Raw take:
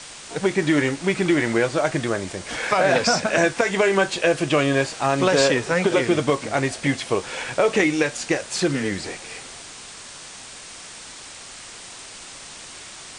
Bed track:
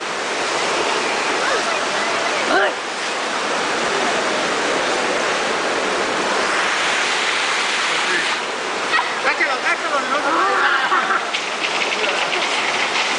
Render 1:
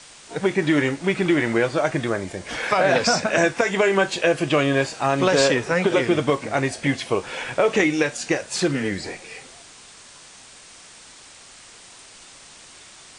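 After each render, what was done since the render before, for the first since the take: noise print and reduce 6 dB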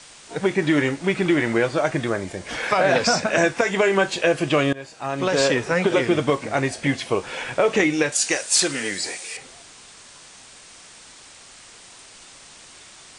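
4.73–5.58 s: fade in, from -21 dB; 8.12–9.37 s: RIAA curve recording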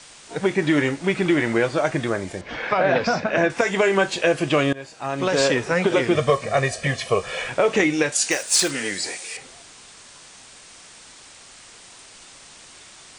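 2.41–3.50 s: distance through air 200 m; 6.15–7.48 s: comb 1.7 ms, depth 78%; 8.31–8.71 s: block-companded coder 5-bit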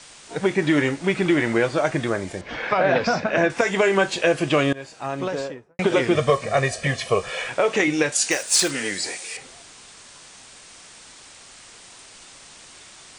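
4.91–5.79 s: studio fade out; 7.29–7.88 s: bass shelf 260 Hz -7 dB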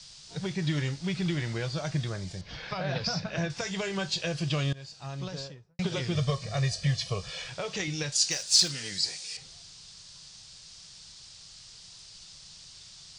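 FFT filter 170 Hz 0 dB, 240 Hz -17 dB, 2.2 kHz -14 dB, 4.8 kHz +3 dB, 9.2 kHz -13 dB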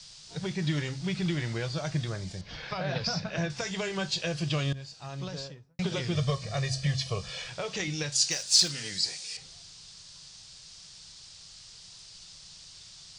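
de-hum 66.72 Hz, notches 4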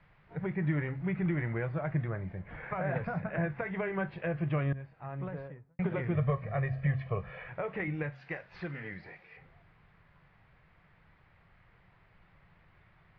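elliptic low-pass 2.1 kHz, stop band 80 dB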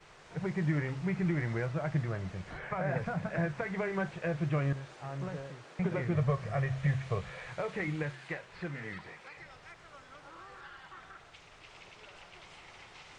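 add bed track -34 dB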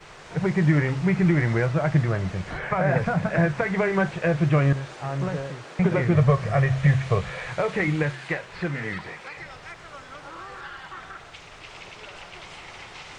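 trim +11 dB

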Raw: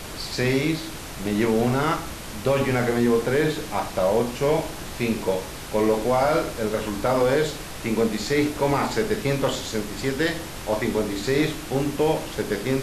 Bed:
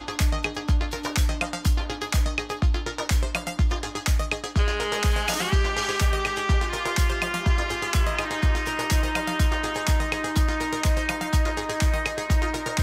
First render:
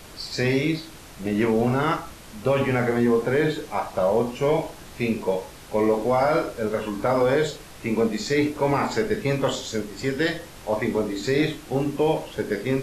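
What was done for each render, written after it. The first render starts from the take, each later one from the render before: noise print and reduce 8 dB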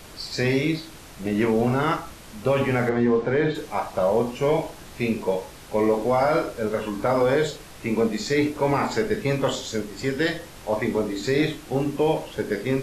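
2.89–3.55 s: distance through air 130 m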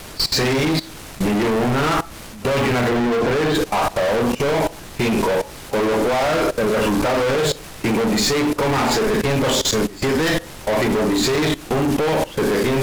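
waveshaping leveller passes 5; level held to a coarse grid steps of 18 dB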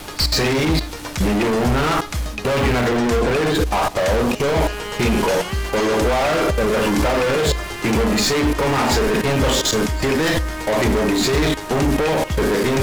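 add bed -2 dB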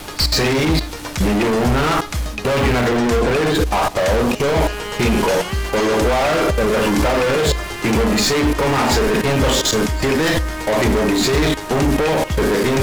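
trim +1.5 dB

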